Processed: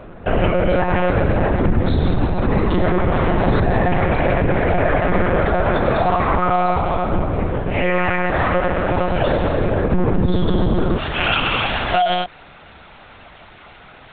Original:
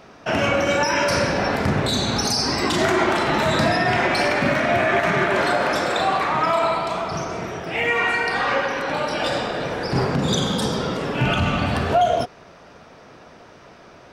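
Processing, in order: tilt -3.5 dB/oct, from 10.97 s +3.5 dB/oct; limiter -12 dBFS, peak gain reduction 11 dB; monotone LPC vocoder at 8 kHz 180 Hz; gain +4 dB

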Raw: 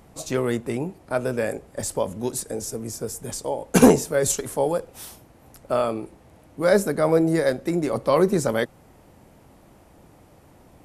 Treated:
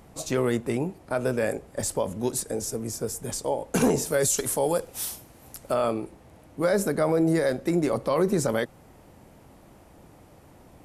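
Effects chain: 4.06–5.74 high shelf 3400 Hz +9.5 dB; limiter -14 dBFS, peak gain reduction 11.5 dB

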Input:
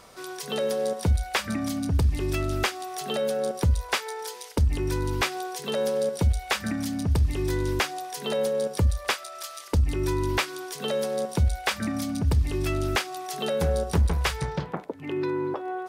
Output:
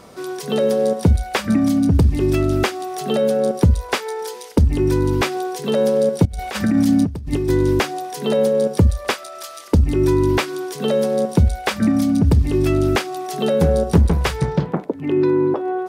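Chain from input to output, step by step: 6.25–7.49 negative-ratio compressor -31 dBFS, ratio -1; bell 230 Hz +11 dB 2.8 oct; gain +2.5 dB

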